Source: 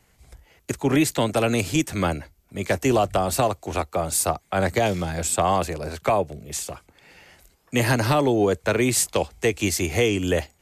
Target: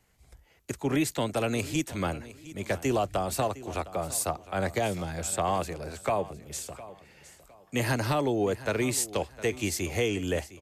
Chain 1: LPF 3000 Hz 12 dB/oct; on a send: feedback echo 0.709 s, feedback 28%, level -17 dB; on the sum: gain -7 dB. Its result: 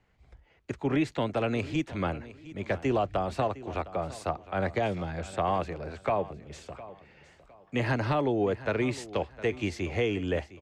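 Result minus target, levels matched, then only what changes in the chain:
4000 Hz band -4.0 dB
remove: LPF 3000 Hz 12 dB/oct

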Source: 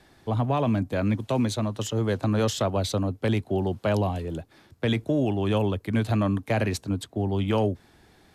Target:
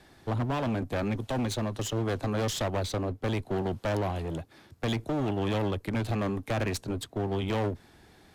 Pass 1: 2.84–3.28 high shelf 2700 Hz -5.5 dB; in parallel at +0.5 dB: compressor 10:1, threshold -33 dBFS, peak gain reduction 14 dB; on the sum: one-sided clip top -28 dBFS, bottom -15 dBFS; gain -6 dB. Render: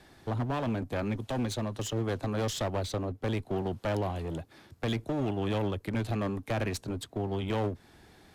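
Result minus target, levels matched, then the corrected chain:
compressor: peak gain reduction +10.5 dB
2.84–3.28 high shelf 2700 Hz -5.5 dB; in parallel at +0.5 dB: compressor 10:1, threshold -21.5 dBFS, peak gain reduction 3.5 dB; on the sum: one-sided clip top -28 dBFS, bottom -15 dBFS; gain -6 dB

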